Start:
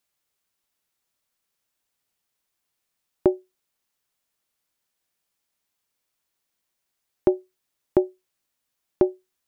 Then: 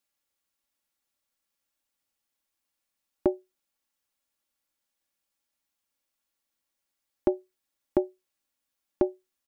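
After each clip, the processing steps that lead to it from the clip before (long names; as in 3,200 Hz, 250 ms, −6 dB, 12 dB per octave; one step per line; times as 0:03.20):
comb filter 3.6 ms, depth 47%
level −5 dB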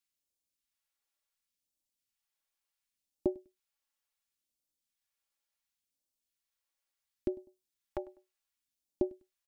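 repeating echo 100 ms, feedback 25%, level −23.5 dB
all-pass phaser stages 2, 0.7 Hz, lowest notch 140–1,500 Hz
level −5 dB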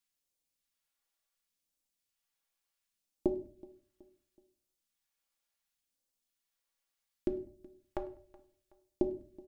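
repeating echo 374 ms, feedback 42%, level −22 dB
on a send at −7 dB: convolution reverb RT60 0.50 s, pre-delay 4 ms
on the sum: level +1 dB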